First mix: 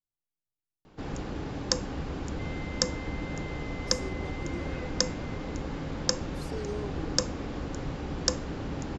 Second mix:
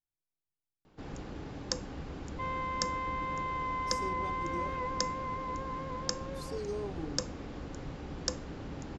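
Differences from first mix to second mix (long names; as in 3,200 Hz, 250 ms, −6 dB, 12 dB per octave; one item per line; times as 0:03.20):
first sound −7.0 dB
second sound: remove Butterworth band-reject 880 Hz, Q 0.7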